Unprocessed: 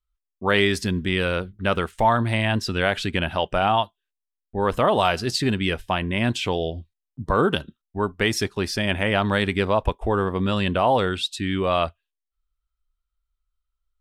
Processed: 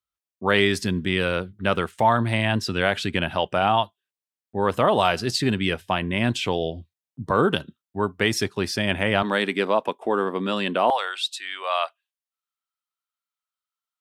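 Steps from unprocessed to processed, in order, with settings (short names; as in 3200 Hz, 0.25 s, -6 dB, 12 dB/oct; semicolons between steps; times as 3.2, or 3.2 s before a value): HPF 92 Hz 24 dB/oct, from 9.23 s 210 Hz, from 10.9 s 690 Hz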